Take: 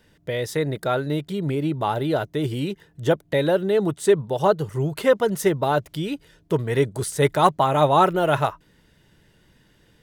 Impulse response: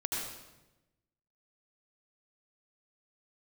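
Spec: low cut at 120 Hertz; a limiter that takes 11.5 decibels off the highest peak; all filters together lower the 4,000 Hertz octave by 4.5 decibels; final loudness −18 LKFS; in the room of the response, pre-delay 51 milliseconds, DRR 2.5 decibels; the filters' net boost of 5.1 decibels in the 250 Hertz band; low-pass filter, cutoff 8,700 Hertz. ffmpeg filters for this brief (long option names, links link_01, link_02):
-filter_complex "[0:a]highpass=120,lowpass=8700,equalizer=frequency=250:width_type=o:gain=8,equalizer=frequency=4000:width_type=o:gain=-5.5,alimiter=limit=-13dB:level=0:latency=1,asplit=2[link_01][link_02];[1:a]atrim=start_sample=2205,adelay=51[link_03];[link_02][link_03]afir=irnorm=-1:irlink=0,volume=-7dB[link_04];[link_01][link_04]amix=inputs=2:normalize=0,volume=4dB"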